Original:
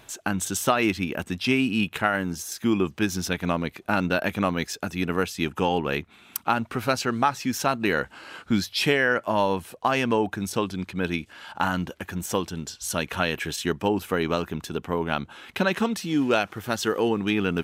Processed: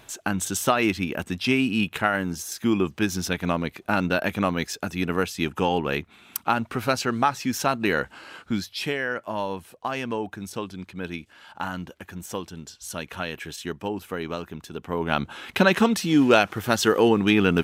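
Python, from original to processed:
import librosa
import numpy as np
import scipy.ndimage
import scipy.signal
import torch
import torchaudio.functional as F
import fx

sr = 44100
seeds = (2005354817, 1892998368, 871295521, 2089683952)

y = fx.gain(x, sr, db=fx.line((8.14, 0.5), (8.8, -6.0), (14.72, -6.0), (15.25, 5.0)))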